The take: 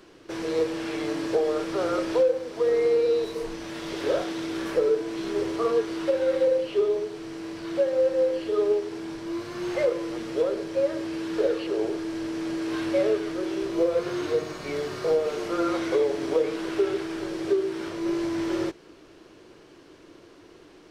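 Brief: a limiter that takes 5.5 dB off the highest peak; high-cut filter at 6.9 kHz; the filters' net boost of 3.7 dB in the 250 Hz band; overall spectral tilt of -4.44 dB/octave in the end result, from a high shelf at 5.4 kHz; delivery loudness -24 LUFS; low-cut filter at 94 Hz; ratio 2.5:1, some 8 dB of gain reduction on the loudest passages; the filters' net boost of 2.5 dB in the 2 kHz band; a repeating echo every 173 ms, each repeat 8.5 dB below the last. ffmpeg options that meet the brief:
-af "highpass=94,lowpass=6900,equalizer=f=250:t=o:g=6,equalizer=f=2000:t=o:g=4,highshelf=f=5400:g=-7,acompressor=threshold=0.0355:ratio=2.5,alimiter=limit=0.0668:level=0:latency=1,aecho=1:1:173|346|519|692:0.376|0.143|0.0543|0.0206,volume=2.37"

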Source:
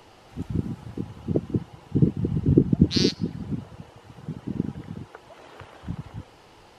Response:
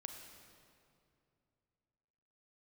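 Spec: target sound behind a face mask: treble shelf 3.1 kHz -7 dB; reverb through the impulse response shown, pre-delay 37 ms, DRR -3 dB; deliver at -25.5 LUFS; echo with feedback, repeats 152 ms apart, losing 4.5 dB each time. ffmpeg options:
-filter_complex "[0:a]aecho=1:1:152|304|456|608|760|912|1064|1216|1368:0.596|0.357|0.214|0.129|0.0772|0.0463|0.0278|0.0167|0.01,asplit=2[s0][s1];[1:a]atrim=start_sample=2205,adelay=37[s2];[s1][s2]afir=irnorm=-1:irlink=0,volume=2.11[s3];[s0][s3]amix=inputs=2:normalize=0,highshelf=f=3100:g=-7,volume=0.562"

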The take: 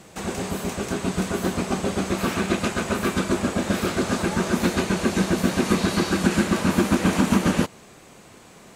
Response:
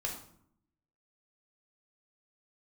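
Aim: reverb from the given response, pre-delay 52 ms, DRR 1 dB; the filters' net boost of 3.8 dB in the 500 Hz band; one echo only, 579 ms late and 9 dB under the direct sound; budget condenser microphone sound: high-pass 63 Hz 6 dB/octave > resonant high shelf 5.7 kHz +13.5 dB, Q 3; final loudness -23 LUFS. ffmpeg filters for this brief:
-filter_complex "[0:a]equalizer=f=500:t=o:g=5.5,aecho=1:1:579:0.355,asplit=2[s0][s1];[1:a]atrim=start_sample=2205,adelay=52[s2];[s1][s2]afir=irnorm=-1:irlink=0,volume=0.668[s3];[s0][s3]amix=inputs=2:normalize=0,highpass=f=63:p=1,highshelf=f=5700:t=q:w=3:g=13.5,volume=0.398"

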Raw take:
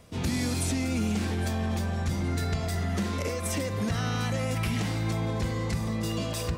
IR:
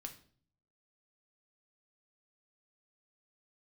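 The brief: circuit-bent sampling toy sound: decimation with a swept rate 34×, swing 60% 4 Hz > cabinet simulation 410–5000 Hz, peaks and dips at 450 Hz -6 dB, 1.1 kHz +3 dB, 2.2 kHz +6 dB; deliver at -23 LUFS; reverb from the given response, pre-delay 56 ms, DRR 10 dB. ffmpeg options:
-filter_complex "[0:a]asplit=2[s0][s1];[1:a]atrim=start_sample=2205,adelay=56[s2];[s1][s2]afir=irnorm=-1:irlink=0,volume=0.501[s3];[s0][s3]amix=inputs=2:normalize=0,acrusher=samples=34:mix=1:aa=0.000001:lfo=1:lforange=20.4:lforate=4,highpass=410,equalizer=f=450:t=q:w=4:g=-6,equalizer=f=1100:t=q:w=4:g=3,equalizer=f=2200:t=q:w=4:g=6,lowpass=f=5000:w=0.5412,lowpass=f=5000:w=1.3066,volume=3.98"

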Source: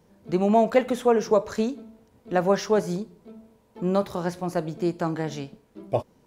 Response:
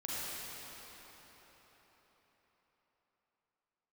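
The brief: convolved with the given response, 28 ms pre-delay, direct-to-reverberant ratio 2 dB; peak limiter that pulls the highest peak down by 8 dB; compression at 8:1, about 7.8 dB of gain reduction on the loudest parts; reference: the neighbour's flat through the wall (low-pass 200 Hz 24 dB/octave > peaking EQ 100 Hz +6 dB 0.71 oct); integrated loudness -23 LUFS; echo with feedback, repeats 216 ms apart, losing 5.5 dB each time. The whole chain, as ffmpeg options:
-filter_complex "[0:a]acompressor=threshold=0.0794:ratio=8,alimiter=limit=0.0944:level=0:latency=1,aecho=1:1:216|432|648|864|1080|1296|1512:0.531|0.281|0.149|0.079|0.0419|0.0222|0.0118,asplit=2[s0][s1];[1:a]atrim=start_sample=2205,adelay=28[s2];[s1][s2]afir=irnorm=-1:irlink=0,volume=0.501[s3];[s0][s3]amix=inputs=2:normalize=0,lowpass=f=200:w=0.5412,lowpass=f=200:w=1.3066,equalizer=f=100:t=o:w=0.71:g=6,volume=4.47"

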